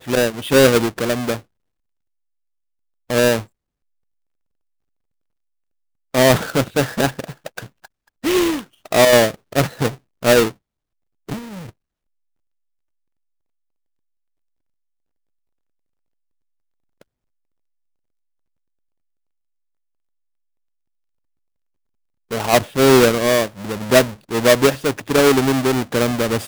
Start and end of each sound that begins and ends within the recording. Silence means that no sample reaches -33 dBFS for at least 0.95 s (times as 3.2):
3.1–3.43
6.14–11.69